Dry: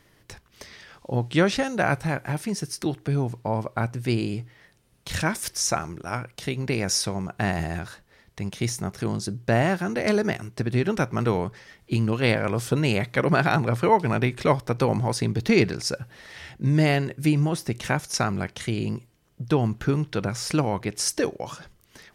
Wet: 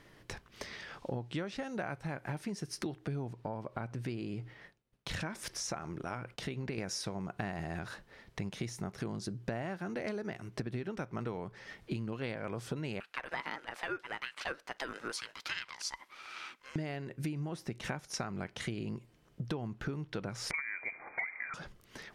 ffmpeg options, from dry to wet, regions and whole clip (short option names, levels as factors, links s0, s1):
-filter_complex "[0:a]asettb=1/sr,asplit=3[s0][s1][s2];[s0]atrim=end=3.334[s3];[s1]atrim=start=3.33:end=6.78,asetpts=PTS-STARTPTS,afade=t=in:d=0.004:c=qsin,afade=t=out:st=3.446:d=0.004:c=qsin,agate=range=0.0224:threshold=0.002:ratio=3:release=100:detection=peak,highshelf=f=6000:g=-4.5,acompressor=threshold=0.0112:ratio=1.5:attack=3.2:release=140:knee=1:detection=peak[s4];[s2]atrim=start=6.776[s5];[s3][s4]acrossfade=d=0.004:c1=hsin:c2=qsin[s6];[s6][s5]acrossfade=d=0.004:c1=qsin:c2=hsin,asettb=1/sr,asplit=3[s7][s8][s9];[s7]atrim=end=13.004[s10];[s8]atrim=start=13:end=16.76,asetpts=PTS-STARTPTS,afade=t=in:d=0.004:c=qsin,afade=t=out:st=3.756:d=0.004:c=qsin,highpass=f=940:w=0.5412,highpass=f=940:w=1.3066,aeval=exprs='val(0)*sin(2*PI*530*n/s)':c=same[s11];[s9]atrim=start=16.756[s12];[s10][s11]acrossfade=d=0.004:c1=hsin:c2=qsin[s13];[s13][s12]acrossfade=d=0.004:c1=qsin:c2=hsin,asettb=1/sr,asplit=3[s14][s15][s16];[s14]atrim=end=20.514[s17];[s15]atrim=start=20.51:end=21.54,asetpts=PTS-STARTPTS,afade=t=in:d=0.004:c=qsin,afade=t=out:st=1.026:d=0.004:c=qsin,aeval=exprs='val(0)+0.5*0.0158*sgn(val(0))':c=same,highpass=45,lowpass=f=2100:t=q:w=0.5098,lowpass=f=2100:t=q:w=0.6013,lowpass=f=2100:t=q:w=0.9,lowpass=f=2100:t=q:w=2.563,afreqshift=-2500[s18];[s16]atrim=start=21.536[s19];[s17][s18]acrossfade=d=0.004:c1=hsin:c2=qsin[s20];[s20][s19]acrossfade=d=0.004:c1=qsin:c2=hsin,lowpass=f=3800:p=1,equalizer=f=76:t=o:w=1.2:g=-5.5,acompressor=threshold=0.0158:ratio=12,volume=1.19"